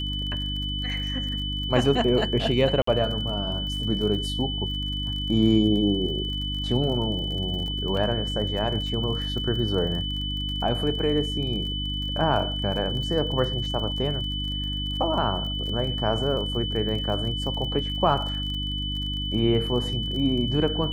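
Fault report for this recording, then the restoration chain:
surface crackle 40 per second −33 dBFS
mains hum 50 Hz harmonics 6 −31 dBFS
whistle 3,000 Hz −30 dBFS
0:02.82–0:02.87: drop-out 54 ms
0:07.97: drop-out 2.8 ms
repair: click removal
hum removal 50 Hz, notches 6
notch filter 3,000 Hz, Q 30
repair the gap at 0:02.82, 54 ms
repair the gap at 0:07.97, 2.8 ms

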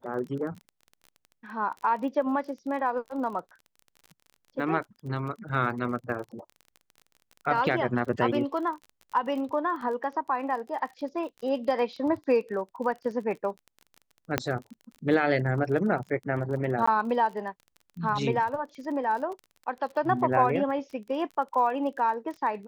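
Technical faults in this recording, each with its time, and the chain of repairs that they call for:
surface crackle 28 per second −37 dBFS
0:14.38: click −9 dBFS
0:16.86–0:16.88: drop-out 15 ms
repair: click removal
repair the gap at 0:16.86, 15 ms

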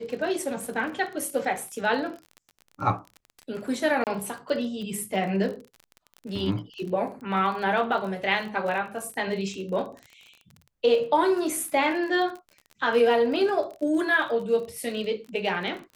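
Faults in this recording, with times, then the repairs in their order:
surface crackle 34 per second −34 dBFS
0:04.04–0:04.07: drop-out 28 ms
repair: click removal
repair the gap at 0:04.04, 28 ms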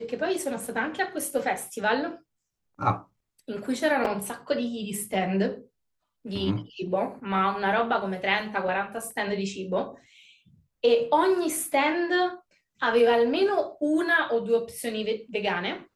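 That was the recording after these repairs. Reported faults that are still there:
none of them is left

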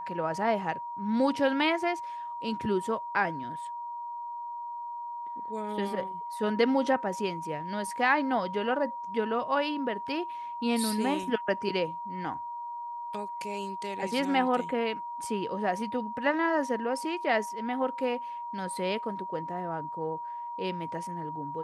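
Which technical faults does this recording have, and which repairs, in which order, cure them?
whistle 950 Hz −35 dBFS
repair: notch filter 950 Hz, Q 30

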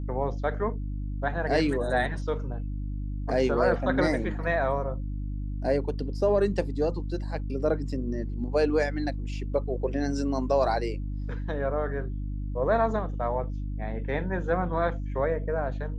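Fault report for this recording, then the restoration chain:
mains hum 50 Hz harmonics 6 −32 dBFS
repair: hum removal 50 Hz, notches 6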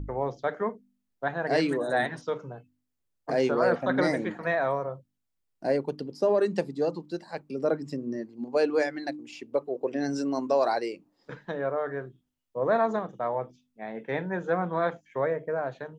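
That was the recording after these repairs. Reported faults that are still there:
none of them is left

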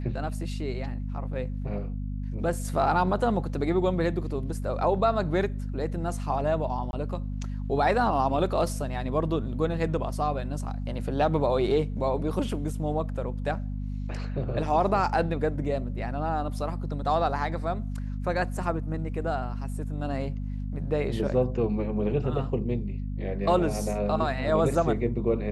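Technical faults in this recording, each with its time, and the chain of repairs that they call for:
mains hum 50 Hz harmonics 5 −32 dBFS
0:06.91–0:06.93: drop-out 21 ms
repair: hum removal 50 Hz, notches 5
repair the gap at 0:06.91, 21 ms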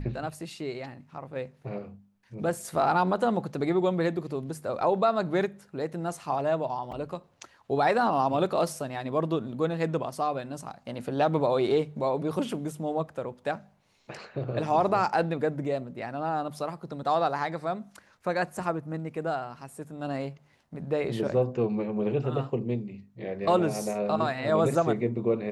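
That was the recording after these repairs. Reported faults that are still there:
none of them is left

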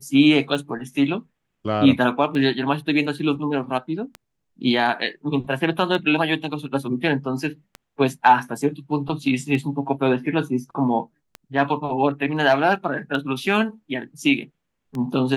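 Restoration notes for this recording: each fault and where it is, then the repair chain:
scratch tick 33 1/3 rpm −18 dBFS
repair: click removal

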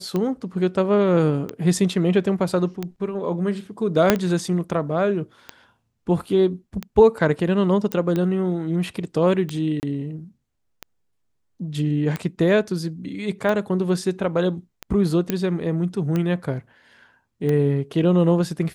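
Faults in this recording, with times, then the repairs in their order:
scratch tick 45 rpm −13 dBFS
0:04.10: click 0 dBFS
0:07.92: click −10 dBFS
0:09.80–0:09.83: drop-out 29 ms
0:15.30: click −8 dBFS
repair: click removal
repair the gap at 0:09.80, 29 ms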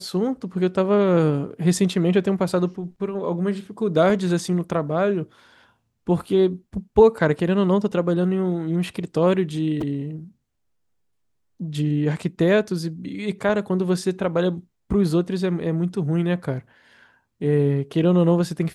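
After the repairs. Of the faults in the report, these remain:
0:04.10: click

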